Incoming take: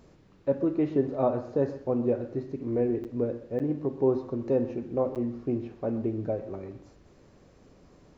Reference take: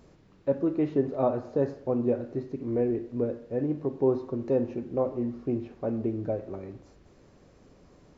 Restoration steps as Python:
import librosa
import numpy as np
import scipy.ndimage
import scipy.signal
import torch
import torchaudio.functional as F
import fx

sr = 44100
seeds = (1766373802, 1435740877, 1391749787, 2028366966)

y = fx.fix_interpolate(x, sr, at_s=(3.04, 3.59, 5.15), length_ms=8.2)
y = fx.fix_echo_inverse(y, sr, delay_ms=127, level_db=-15.5)